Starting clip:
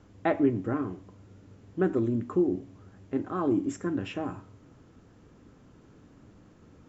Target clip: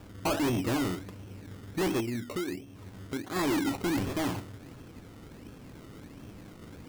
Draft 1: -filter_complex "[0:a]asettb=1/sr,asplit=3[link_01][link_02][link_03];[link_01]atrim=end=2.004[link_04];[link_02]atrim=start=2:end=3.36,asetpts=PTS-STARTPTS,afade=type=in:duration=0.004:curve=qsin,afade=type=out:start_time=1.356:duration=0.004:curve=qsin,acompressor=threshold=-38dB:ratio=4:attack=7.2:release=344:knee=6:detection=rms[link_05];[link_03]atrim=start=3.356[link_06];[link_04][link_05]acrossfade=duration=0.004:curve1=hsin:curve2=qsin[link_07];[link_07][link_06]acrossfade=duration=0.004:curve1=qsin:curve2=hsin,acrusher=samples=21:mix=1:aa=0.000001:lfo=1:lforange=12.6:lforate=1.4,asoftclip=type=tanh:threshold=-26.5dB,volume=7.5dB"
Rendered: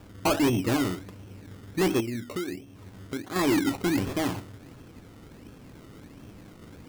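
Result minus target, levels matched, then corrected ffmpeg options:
soft clipping: distortion −4 dB
-filter_complex "[0:a]asettb=1/sr,asplit=3[link_01][link_02][link_03];[link_01]atrim=end=2.004[link_04];[link_02]atrim=start=2:end=3.36,asetpts=PTS-STARTPTS,afade=type=in:duration=0.004:curve=qsin,afade=type=out:start_time=1.356:duration=0.004:curve=qsin,acompressor=threshold=-38dB:ratio=4:attack=7.2:release=344:knee=6:detection=rms[link_05];[link_03]atrim=start=3.356[link_06];[link_04][link_05]acrossfade=duration=0.004:curve1=hsin:curve2=qsin[link_07];[link_07][link_06]acrossfade=duration=0.004:curve1=qsin:curve2=hsin,acrusher=samples=21:mix=1:aa=0.000001:lfo=1:lforange=12.6:lforate=1.4,asoftclip=type=tanh:threshold=-33dB,volume=7.5dB"

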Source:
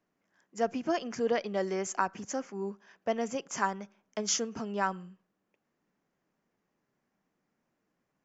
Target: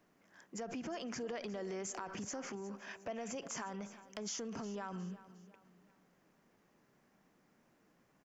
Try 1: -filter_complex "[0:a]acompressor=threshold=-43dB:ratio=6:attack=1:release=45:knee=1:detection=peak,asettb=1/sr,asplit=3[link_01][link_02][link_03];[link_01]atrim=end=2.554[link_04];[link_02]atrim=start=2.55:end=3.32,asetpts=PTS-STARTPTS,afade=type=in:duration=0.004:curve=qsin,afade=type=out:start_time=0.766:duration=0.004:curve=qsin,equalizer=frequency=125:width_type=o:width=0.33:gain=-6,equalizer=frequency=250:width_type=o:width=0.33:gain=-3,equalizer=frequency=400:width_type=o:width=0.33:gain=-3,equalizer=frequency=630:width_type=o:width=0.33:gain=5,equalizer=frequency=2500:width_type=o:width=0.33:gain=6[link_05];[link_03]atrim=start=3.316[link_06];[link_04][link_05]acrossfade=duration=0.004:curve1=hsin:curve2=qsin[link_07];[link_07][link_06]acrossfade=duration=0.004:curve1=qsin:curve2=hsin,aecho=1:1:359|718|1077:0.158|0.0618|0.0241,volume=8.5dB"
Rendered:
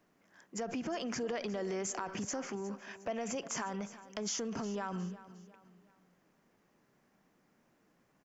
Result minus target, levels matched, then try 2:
downward compressor: peak gain reduction −5 dB
-filter_complex "[0:a]acompressor=threshold=-49dB:ratio=6:attack=1:release=45:knee=1:detection=peak,asettb=1/sr,asplit=3[link_01][link_02][link_03];[link_01]atrim=end=2.554[link_04];[link_02]atrim=start=2.55:end=3.32,asetpts=PTS-STARTPTS,afade=type=in:duration=0.004:curve=qsin,afade=type=out:start_time=0.766:duration=0.004:curve=qsin,equalizer=frequency=125:width_type=o:width=0.33:gain=-6,equalizer=frequency=250:width_type=o:width=0.33:gain=-3,equalizer=frequency=400:width_type=o:width=0.33:gain=-3,equalizer=frequency=630:width_type=o:width=0.33:gain=5,equalizer=frequency=2500:width_type=o:width=0.33:gain=6[link_05];[link_03]atrim=start=3.316[link_06];[link_04][link_05]acrossfade=duration=0.004:curve1=hsin:curve2=qsin[link_07];[link_07][link_06]acrossfade=duration=0.004:curve1=qsin:curve2=hsin,aecho=1:1:359|718|1077:0.158|0.0618|0.0241,volume=8.5dB"

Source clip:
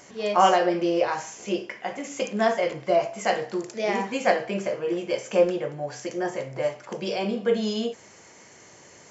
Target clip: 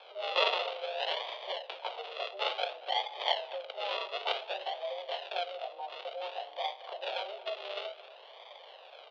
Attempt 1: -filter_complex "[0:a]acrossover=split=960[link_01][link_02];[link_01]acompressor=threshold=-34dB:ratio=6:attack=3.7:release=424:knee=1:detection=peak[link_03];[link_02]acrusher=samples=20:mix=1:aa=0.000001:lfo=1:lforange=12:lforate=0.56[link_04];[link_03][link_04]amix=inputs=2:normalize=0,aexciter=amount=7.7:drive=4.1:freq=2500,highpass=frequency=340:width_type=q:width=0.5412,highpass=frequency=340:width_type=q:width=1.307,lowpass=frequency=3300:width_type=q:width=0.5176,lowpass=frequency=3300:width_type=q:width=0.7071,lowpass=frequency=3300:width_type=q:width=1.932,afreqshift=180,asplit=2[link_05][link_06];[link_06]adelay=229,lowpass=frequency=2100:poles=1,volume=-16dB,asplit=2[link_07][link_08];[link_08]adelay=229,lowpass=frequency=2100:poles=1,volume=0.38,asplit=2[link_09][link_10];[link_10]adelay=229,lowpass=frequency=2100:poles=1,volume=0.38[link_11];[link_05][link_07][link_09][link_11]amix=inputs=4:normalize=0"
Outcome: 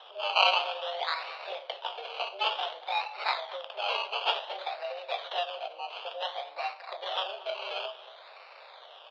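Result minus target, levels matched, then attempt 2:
sample-and-hold swept by an LFO: distortion −20 dB
-filter_complex "[0:a]acrossover=split=960[link_01][link_02];[link_01]acompressor=threshold=-34dB:ratio=6:attack=3.7:release=424:knee=1:detection=peak[link_03];[link_02]acrusher=samples=48:mix=1:aa=0.000001:lfo=1:lforange=28.8:lforate=0.56[link_04];[link_03][link_04]amix=inputs=2:normalize=0,aexciter=amount=7.7:drive=4.1:freq=2500,highpass=frequency=340:width_type=q:width=0.5412,highpass=frequency=340:width_type=q:width=1.307,lowpass=frequency=3300:width_type=q:width=0.5176,lowpass=frequency=3300:width_type=q:width=0.7071,lowpass=frequency=3300:width_type=q:width=1.932,afreqshift=180,asplit=2[link_05][link_06];[link_06]adelay=229,lowpass=frequency=2100:poles=1,volume=-16dB,asplit=2[link_07][link_08];[link_08]adelay=229,lowpass=frequency=2100:poles=1,volume=0.38,asplit=2[link_09][link_10];[link_10]adelay=229,lowpass=frequency=2100:poles=1,volume=0.38[link_11];[link_05][link_07][link_09][link_11]amix=inputs=4:normalize=0"

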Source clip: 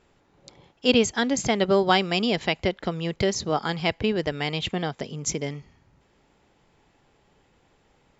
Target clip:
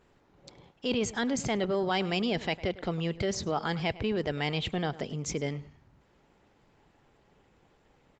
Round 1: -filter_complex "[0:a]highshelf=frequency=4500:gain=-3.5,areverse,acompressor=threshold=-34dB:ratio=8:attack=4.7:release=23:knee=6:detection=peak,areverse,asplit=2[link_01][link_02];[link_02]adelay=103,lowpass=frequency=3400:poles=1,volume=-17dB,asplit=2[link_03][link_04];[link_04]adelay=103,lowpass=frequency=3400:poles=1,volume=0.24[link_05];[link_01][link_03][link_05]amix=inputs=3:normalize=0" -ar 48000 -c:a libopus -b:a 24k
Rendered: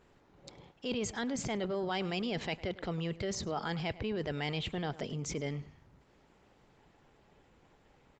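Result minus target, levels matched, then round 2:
downward compressor: peak gain reduction +6 dB
-filter_complex "[0:a]highshelf=frequency=4500:gain=-3.5,areverse,acompressor=threshold=-27dB:ratio=8:attack=4.7:release=23:knee=6:detection=peak,areverse,asplit=2[link_01][link_02];[link_02]adelay=103,lowpass=frequency=3400:poles=1,volume=-17dB,asplit=2[link_03][link_04];[link_04]adelay=103,lowpass=frequency=3400:poles=1,volume=0.24[link_05];[link_01][link_03][link_05]amix=inputs=3:normalize=0" -ar 48000 -c:a libopus -b:a 24k

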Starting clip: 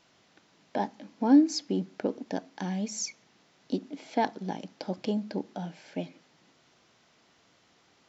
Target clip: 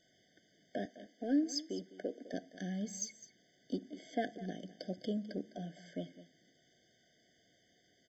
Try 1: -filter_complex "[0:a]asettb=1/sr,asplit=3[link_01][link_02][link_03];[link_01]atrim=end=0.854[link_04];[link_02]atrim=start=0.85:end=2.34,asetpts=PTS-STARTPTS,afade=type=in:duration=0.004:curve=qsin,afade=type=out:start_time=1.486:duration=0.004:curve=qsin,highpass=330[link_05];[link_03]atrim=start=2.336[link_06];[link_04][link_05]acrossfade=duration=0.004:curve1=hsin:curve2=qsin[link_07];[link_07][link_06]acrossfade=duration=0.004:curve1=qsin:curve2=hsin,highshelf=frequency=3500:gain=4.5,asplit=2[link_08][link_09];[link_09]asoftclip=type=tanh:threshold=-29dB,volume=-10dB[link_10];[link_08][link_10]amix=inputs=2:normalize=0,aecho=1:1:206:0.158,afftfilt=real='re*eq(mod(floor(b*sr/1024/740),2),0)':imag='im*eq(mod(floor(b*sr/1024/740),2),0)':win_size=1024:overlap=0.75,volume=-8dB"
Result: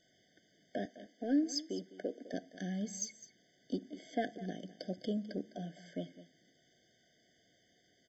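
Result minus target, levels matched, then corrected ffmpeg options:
soft clipping: distortion −4 dB
-filter_complex "[0:a]asettb=1/sr,asplit=3[link_01][link_02][link_03];[link_01]atrim=end=0.854[link_04];[link_02]atrim=start=0.85:end=2.34,asetpts=PTS-STARTPTS,afade=type=in:duration=0.004:curve=qsin,afade=type=out:start_time=1.486:duration=0.004:curve=qsin,highpass=330[link_05];[link_03]atrim=start=2.336[link_06];[link_04][link_05]acrossfade=duration=0.004:curve1=hsin:curve2=qsin[link_07];[link_07][link_06]acrossfade=duration=0.004:curve1=qsin:curve2=hsin,highshelf=frequency=3500:gain=4.5,asplit=2[link_08][link_09];[link_09]asoftclip=type=tanh:threshold=-38dB,volume=-10dB[link_10];[link_08][link_10]amix=inputs=2:normalize=0,aecho=1:1:206:0.158,afftfilt=real='re*eq(mod(floor(b*sr/1024/740),2),0)':imag='im*eq(mod(floor(b*sr/1024/740),2),0)':win_size=1024:overlap=0.75,volume=-8dB"

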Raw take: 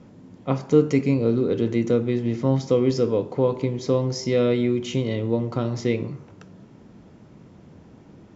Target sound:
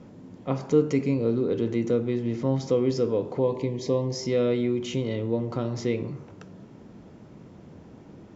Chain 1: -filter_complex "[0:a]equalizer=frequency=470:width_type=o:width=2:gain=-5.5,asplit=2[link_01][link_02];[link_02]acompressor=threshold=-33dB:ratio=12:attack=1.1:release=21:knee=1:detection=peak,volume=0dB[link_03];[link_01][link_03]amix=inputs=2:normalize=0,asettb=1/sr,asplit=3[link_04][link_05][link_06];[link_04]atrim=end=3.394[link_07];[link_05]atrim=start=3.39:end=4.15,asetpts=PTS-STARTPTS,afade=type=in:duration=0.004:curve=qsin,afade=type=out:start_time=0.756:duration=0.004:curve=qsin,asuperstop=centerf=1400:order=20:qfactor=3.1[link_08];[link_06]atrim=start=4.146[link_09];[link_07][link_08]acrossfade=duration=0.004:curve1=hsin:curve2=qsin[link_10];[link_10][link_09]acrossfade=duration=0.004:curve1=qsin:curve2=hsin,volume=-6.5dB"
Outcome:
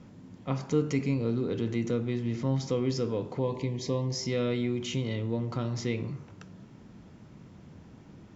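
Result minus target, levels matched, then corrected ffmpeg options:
500 Hz band −2.5 dB
-filter_complex "[0:a]equalizer=frequency=470:width_type=o:width=2:gain=2.5,asplit=2[link_01][link_02];[link_02]acompressor=threshold=-33dB:ratio=12:attack=1.1:release=21:knee=1:detection=peak,volume=0dB[link_03];[link_01][link_03]amix=inputs=2:normalize=0,asettb=1/sr,asplit=3[link_04][link_05][link_06];[link_04]atrim=end=3.394[link_07];[link_05]atrim=start=3.39:end=4.15,asetpts=PTS-STARTPTS,afade=type=in:duration=0.004:curve=qsin,afade=type=out:start_time=0.756:duration=0.004:curve=qsin,asuperstop=centerf=1400:order=20:qfactor=3.1[link_08];[link_06]atrim=start=4.146[link_09];[link_07][link_08]acrossfade=duration=0.004:curve1=hsin:curve2=qsin[link_10];[link_10][link_09]acrossfade=duration=0.004:curve1=qsin:curve2=hsin,volume=-6.5dB"

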